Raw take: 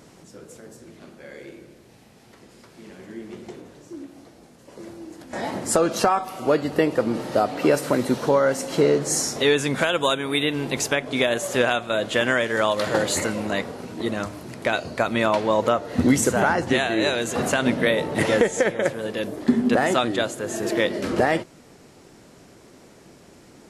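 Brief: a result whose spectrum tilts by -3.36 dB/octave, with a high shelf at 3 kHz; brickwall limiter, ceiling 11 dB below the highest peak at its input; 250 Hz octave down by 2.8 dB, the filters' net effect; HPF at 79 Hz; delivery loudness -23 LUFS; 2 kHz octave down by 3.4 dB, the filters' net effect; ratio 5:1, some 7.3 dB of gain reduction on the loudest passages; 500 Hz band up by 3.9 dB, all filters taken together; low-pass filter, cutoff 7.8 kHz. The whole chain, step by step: high-pass 79 Hz; low-pass 7.8 kHz; peaking EQ 250 Hz -5.5 dB; peaking EQ 500 Hz +6 dB; peaking EQ 2 kHz -7.5 dB; treble shelf 3 kHz +7.5 dB; compression 5:1, threshold -19 dBFS; trim +5 dB; peak limiter -13 dBFS

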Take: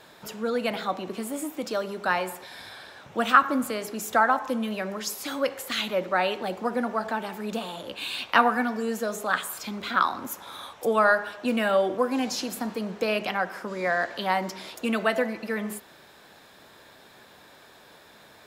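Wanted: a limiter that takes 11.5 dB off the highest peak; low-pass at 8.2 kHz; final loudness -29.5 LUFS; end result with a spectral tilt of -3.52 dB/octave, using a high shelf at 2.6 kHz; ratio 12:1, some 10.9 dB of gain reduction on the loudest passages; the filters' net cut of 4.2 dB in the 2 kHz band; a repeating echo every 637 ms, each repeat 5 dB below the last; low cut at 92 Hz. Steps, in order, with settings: high-pass 92 Hz; low-pass 8.2 kHz; peaking EQ 2 kHz -7.5 dB; treble shelf 2.6 kHz +3.5 dB; compression 12:1, threshold -25 dBFS; peak limiter -24.5 dBFS; feedback delay 637 ms, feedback 56%, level -5 dB; trim +3.5 dB

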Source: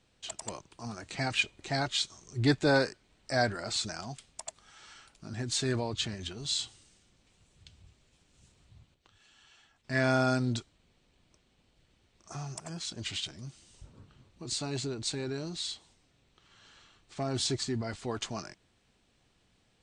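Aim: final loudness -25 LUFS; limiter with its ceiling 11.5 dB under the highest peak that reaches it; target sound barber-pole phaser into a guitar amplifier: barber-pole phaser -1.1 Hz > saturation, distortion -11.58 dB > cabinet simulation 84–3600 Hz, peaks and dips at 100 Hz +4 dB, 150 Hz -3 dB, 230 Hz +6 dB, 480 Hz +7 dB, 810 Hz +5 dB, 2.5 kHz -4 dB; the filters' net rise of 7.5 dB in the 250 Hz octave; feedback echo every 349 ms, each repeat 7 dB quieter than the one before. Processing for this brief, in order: peaking EQ 250 Hz +5 dB; peak limiter -21.5 dBFS; feedback delay 349 ms, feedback 45%, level -7 dB; barber-pole phaser -1.1 Hz; saturation -32 dBFS; cabinet simulation 84–3600 Hz, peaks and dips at 100 Hz +4 dB, 150 Hz -3 dB, 230 Hz +6 dB, 480 Hz +7 dB, 810 Hz +5 dB, 2.5 kHz -4 dB; trim +14 dB

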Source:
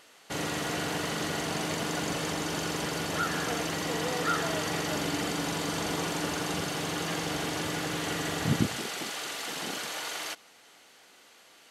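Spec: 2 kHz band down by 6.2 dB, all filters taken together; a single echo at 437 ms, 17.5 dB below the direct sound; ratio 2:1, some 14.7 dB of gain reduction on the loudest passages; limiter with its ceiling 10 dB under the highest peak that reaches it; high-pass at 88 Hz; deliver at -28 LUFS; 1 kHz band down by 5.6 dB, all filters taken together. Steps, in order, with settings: high-pass 88 Hz; peaking EQ 1 kHz -6 dB; peaking EQ 2 kHz -6 dB; compression 2:1, threshold -49 dBFS; peak limiter -36.5 dBFS; delay 437 ms -17.5 dB; trim +17.5 dB

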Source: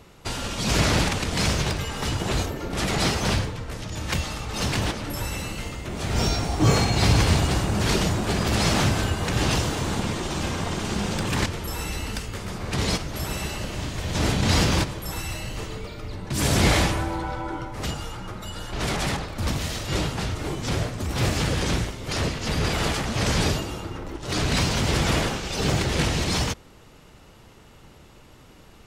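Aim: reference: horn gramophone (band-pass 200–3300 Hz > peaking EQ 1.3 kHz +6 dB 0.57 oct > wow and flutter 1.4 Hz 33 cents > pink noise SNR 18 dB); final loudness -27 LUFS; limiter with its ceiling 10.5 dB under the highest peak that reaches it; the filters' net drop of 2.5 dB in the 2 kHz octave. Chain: peaking EQ 2 kHz -5 dB; peak limiter -17 dBFS; band-pass 200–3300 Hz; peaking EQ 1.3 kHz +6 dB 0.57 oct; wow and flutter 1.4 Hz 33 cents; pink noise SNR 18 dB; trim +4 dB

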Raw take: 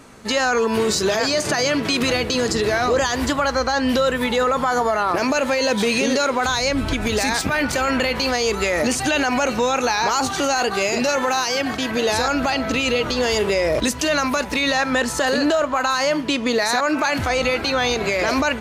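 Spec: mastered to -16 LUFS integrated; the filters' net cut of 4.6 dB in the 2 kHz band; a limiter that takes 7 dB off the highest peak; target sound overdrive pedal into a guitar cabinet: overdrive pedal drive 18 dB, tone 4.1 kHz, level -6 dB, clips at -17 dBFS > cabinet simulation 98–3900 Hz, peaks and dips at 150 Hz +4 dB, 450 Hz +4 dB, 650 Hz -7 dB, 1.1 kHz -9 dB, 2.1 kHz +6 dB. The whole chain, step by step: peaking EQ 2 kHz -8 dB; peak limiter -17 dBFS; overdrive pedal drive 18 dB, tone 4.1 kHz, level -6 dB, clips at -17 dBFS; cabinet simulation 98–3900 Hz, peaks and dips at 150 Hz +4 dB, 450 Hz +4 dB, 650 Hz -7 dB, 1.1 kHz -9 dB, 2.1 kHz +6 dB; trim +8 dB

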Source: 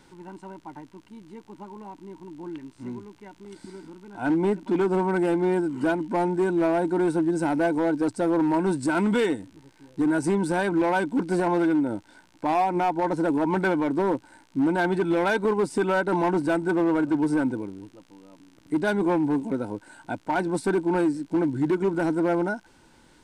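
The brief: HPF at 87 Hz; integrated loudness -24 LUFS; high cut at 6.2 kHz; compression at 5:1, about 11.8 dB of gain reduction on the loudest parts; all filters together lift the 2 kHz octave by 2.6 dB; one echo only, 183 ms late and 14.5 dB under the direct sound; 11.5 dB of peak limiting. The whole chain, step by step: high-pass 87 Hz; low-pass 6.2 kHz; peaking EQ 2 kHz +4 dB; compression 5:1, threshold -33 dBFS; peak limiter -33 dBFS; delay 183 ms -14.5 dB; trim +17 dB

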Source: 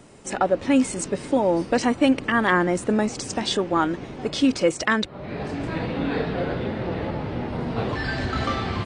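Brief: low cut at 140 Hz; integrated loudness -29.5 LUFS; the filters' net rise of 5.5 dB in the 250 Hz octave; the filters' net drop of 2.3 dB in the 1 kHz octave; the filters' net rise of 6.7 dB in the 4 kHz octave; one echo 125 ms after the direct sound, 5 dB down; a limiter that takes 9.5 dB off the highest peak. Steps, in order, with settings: high-pass 140 Hz; peaking EQ 250 Hz +7 dB; peaking EQ 1 kHz -4 dB; peaking EQ 4 kHz +8.5 dB; peak limiter -12.5 dBFS; delay 125 ms -5 dB; trim -7.5 dB

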